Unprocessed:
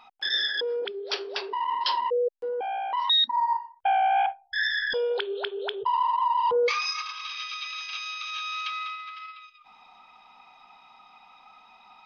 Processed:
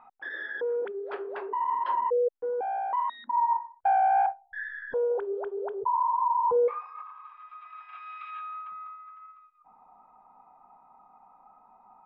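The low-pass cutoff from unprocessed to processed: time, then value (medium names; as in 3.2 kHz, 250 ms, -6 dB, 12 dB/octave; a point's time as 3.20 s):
low-pass 24 dB/octave
4.11 s 1.6 kHz
5.16 s 1.1 kHz
7.43 s 1.1 kHz
8.27 s 1.9 kHz
8.68 s 1.1 kHz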